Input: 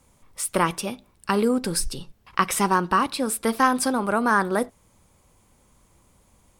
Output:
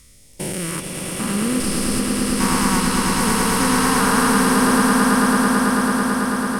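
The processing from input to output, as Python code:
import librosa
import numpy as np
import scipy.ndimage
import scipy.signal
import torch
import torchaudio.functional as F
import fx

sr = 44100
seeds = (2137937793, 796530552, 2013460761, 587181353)

p1 = fx.spec_steps(x, sr, hold_ms=400)
p2 = fx.phaser_stages(p1, sr, stages=2, low_hz=430.0, high_hz=1200.0, hz=0.67, feedback_pct=5)
p3 = p2 + fx.echo_swell(p2, sr, ms=110, loudest=8, wet_db=-5.0, dry=0)
y = F.gain(torch.from_numpy(p3), 8.0).numpy()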